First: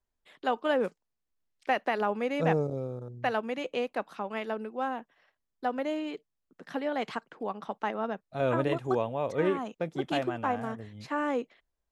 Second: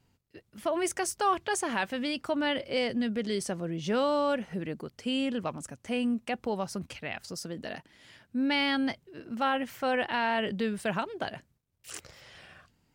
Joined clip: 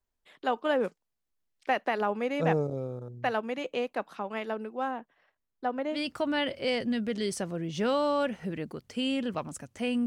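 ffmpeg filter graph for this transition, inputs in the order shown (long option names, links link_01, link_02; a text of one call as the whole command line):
ffmpeg -i cue0.wav -i cue1.wav -filter_complex "[0:a]asettb=1/sr,asplit=3[link_01][link_02][link_03];[link_01]atrim=end=4.914[link_04];[link_02]atrim=start=4.91:end=5.99,asetpts=PTS-STARTPTS,afade=type=in:duration=0.004:curve=qsin,afade=type=out:start_time=1.076:duration=0.004:curve=qsin,highshelf=frequency=3800:gain=-8.5[link_05];[link_03]atrim=start=5.986[link_06];[link_04][link_05]acrossfade=duration=0.004:curve1=hsin:curve2=qsin[link_07];[link_07][link_06]acrossfade=duration=0.004:curve1=qsin:curve2=hsin,apad=whole_dur=10.06,atrim=end=10.06,atrim=end=5.99,asetpts=PTS-STARTPTS[link_08];[1:a]atrim=start=2:end=6.15,asetpts=PTS-STARTPTS[link_09];[link_08][link_09]acrossfade=duration=0.08:curve1=tri:curve2=tri" out.wav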